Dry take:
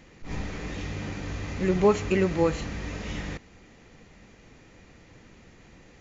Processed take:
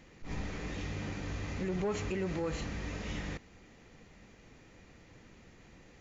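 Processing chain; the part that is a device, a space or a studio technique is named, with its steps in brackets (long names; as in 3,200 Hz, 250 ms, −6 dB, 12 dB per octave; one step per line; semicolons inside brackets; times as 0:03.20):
soft clipper into limiter (soft clipping −15 dBFS, distortion −17 dB; brickwall limiter −23 dBFS, peak gain reduction 7.5 dB)
level −4.5 dB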